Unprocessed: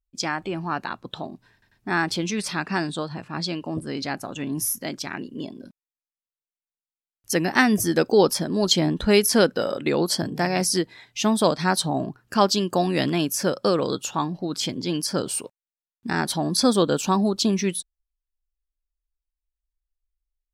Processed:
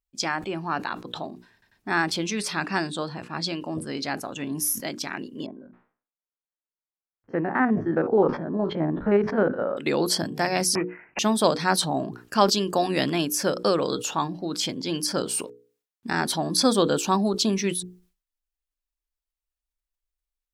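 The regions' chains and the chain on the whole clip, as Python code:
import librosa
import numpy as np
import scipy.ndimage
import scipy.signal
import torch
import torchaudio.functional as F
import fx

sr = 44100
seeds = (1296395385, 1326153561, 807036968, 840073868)

y = fx.chain(x, sr, fx.spec_steps(hold_ms=50),
    fx.lowpass(hz=1600.0, slope=24),
    fx.sustainer(db_per_s=140.0), at=(5.46, 9.77))
y = fx.chain(y, sr, fx.law_mismatch(coded='A'),
    fx.resample_bad(factor=8, down='none', up='filtered'),
    fx.band_squash(depth_pct=70), at=(10.75, 11.19))
y = fx.low_shelf(y, sr, hz=140.0, db=-7.5)
y = fx.hum_notches(y, sr, base_hz=60, count=8)
y = fx.sustainer(y, sr, db_per_s=140.0)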